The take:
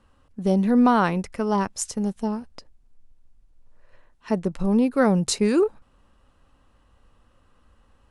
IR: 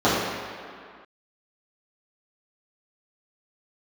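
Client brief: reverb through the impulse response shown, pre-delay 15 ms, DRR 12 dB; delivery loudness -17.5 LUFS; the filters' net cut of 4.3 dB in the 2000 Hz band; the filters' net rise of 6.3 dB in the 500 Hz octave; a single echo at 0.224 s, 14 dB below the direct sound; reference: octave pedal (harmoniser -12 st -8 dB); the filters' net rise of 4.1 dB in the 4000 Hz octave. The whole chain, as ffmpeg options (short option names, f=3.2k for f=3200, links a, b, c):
-filter_complex "[0:a]equalizer=f=500:t=o:g=8,equalizer=f=2k:t=o:g=-8.5,equalizer=f=4k:t=o:g=6.5,aecho=1:1:224:0.2,asplit=2[a][b];[1:a]atrim=start_sample=2205,adelay=15[c];[b][c]afir=irnorm=-1:irlink=0,volume=-34.5dB[d];[a][d]amix=inputs=2:normalize=0,asplit=2[e][f];[f]asetrate=22050,aresample=44100,atempo=2,volume=-8dB[g];[e][g]amix=inputs=2:normalize=0,volume=0.5dB"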